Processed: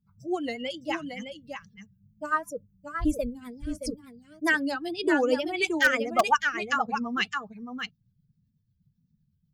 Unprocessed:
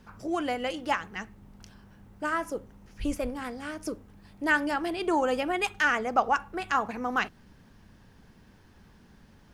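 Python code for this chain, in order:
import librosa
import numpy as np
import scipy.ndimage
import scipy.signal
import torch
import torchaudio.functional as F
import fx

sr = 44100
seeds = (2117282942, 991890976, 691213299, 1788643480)

p1 = fx.bin_expand(x, sr, power=2.0)
p2 = p1 + fx.echo_single(p1, sr, ms=619, db=-6.5, dry=0)
p3 = fx.rotary(p2, sr, hz=8.0)
p4 = fx.dynamic_eq(p3, sr, hz=4400.0, q=1.1, threshold_db=-54.0, ratio=4.0, max_db=5)
p5 = fx.wow_flutter(p4, sr, seeds[0], rate_hz=2.1, depth_cents=90.0)
p6 = (np.mod(10.0 ** (17.5 / 20.0) * p5 + 1.0, 2.0) - 1.0) / 10.0 ** (17.5 / 20.0)
p7 = p5 + (p6 * librosa.db_to_amplitude(-8.0))
y = p7 * librosa.db_to_amplitude(4.5)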